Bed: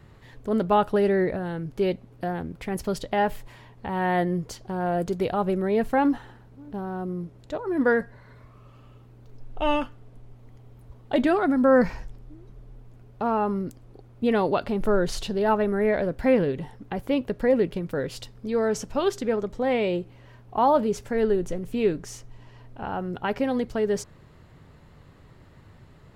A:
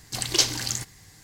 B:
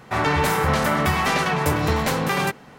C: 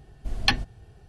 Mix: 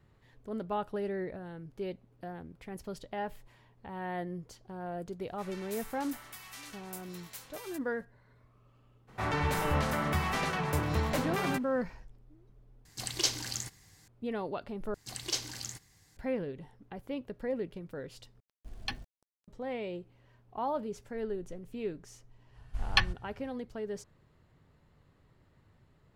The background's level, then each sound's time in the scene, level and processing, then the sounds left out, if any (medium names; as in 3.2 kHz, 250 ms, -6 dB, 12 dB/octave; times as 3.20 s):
bed -13.5 dB
5.27 s: add B -15.5 dB + pre-emphasis filter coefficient 0.97
9.07 s: add B -11.5 dB, fades 0.02 s + bass shelf 90 Hz +9 dB
12.85 s: replace with A -8.5 dB
14.94 s: replace with A -12.5 dB
18.40 s: replace with C -15.5 dB + small samples zeroed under -41 dBFS
22.49 s: add C -3.5 dB, fades 0.10 s + FFT filter 120 Hz 0 dB, 350 Hz -22 dB, 1.1 kHz +4 dB, 5.6 kHz -3 dB